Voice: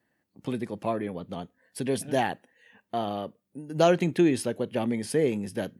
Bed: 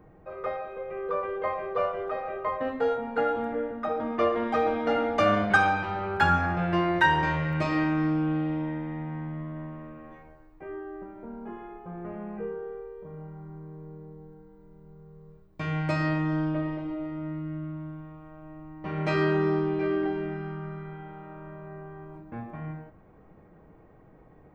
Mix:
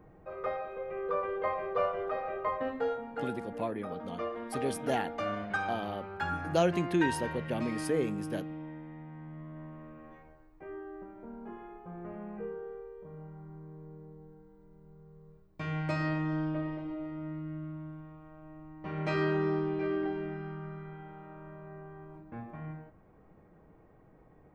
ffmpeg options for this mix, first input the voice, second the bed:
-filter_complex "[0:a]adelay=2750,volume=-6dB[a];[1:a]volume=4.5dB,afade=t=out:st=2.46:d=0.8:silence=0.334965,afade=t=in:st=9.15:d=0.89:silence=0.446684[b];[a][b]amix=inputs=2:normalize=0"

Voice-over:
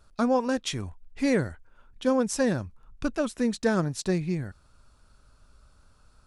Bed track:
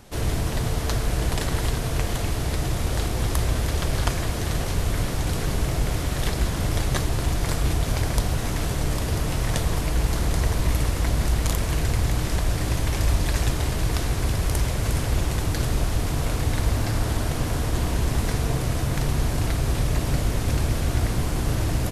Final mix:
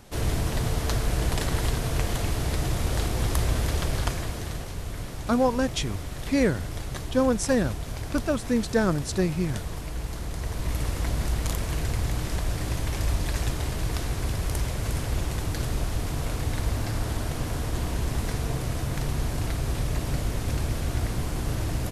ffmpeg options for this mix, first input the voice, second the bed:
-filter_complex "[0:a]adelay=5100,volume=1.5dB[a];[1:a]volume=4dB,afade=t=out:st=3.7:d=1:silence=0.375837,afade=t=in:st=10.37:d=0.56:silence=0.530884[b];[a][b]amix=inputs=2:normalize=0"

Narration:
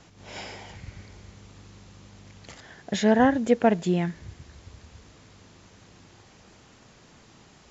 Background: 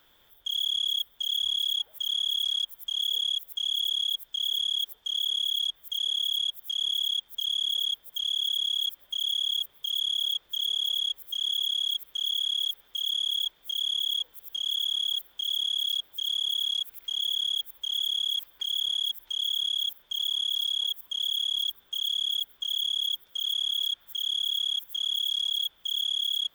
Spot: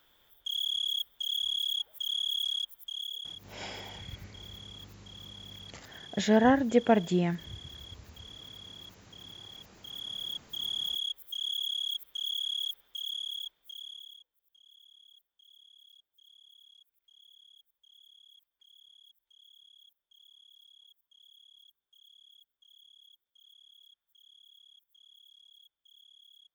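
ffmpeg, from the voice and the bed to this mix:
-filter_complex "[0:a]adelay=3250,volume=-3dB[a];[1:a]volume=11.5dB,afade=t=out:st=2.47:d=0.98:silence=0.141254,afade=t=in:st=9.64:d=1.14:silence=0.16788,afade=t=out:st=12.66:d=1.6:silence=0.0562341[b];[a][b]amix=inputs=2:normalize=0"

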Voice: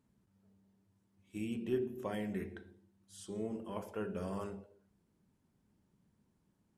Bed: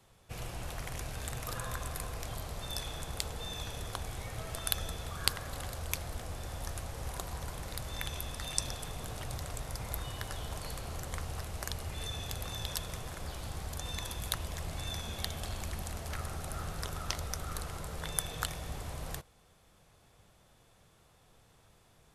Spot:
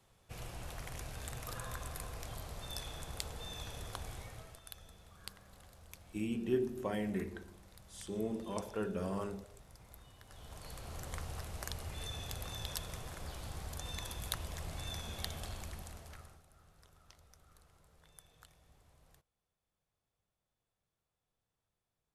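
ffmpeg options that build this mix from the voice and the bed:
-filter_complex "[0:a]adelay=4800,volume=2dB[a];[1:a]volume=9.5dB,afade=t=out:st=4.11:d=0.5:silence=0.211349,afade=t=in:st=10.25:d=0.83:silence=0.188365,afade=t=out:st=15.35:d=1.09:silence=0.0841395[b];[a][b]amix=inputs=2:normalize=0"

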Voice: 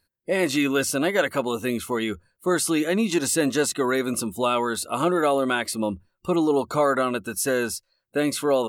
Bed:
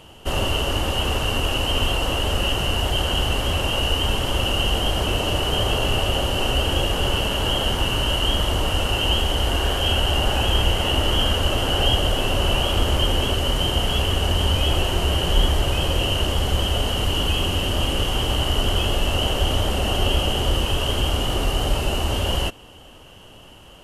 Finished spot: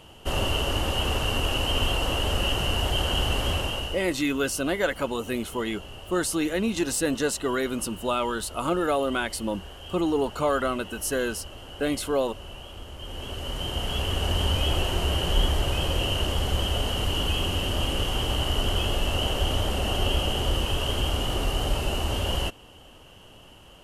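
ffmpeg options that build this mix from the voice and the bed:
-filter_complex "[0:a]adelay=3650,volume=-3.5dB[a];[1:a]volume=13dB,afade=t=out:st=3.5:d=0.57:silence=0.133352,afade=t=in:st=12.97:d=1.39:silence=0.149624[b];[a][b]amix=inputs=2:normalize=0"

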